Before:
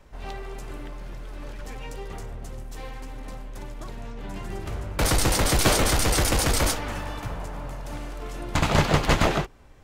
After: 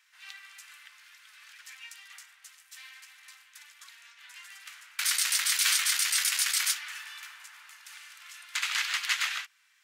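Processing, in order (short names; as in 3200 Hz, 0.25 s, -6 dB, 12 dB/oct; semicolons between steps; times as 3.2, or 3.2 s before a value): inverse Chebyshev high-pass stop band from 480 Hz, stop band 60 dB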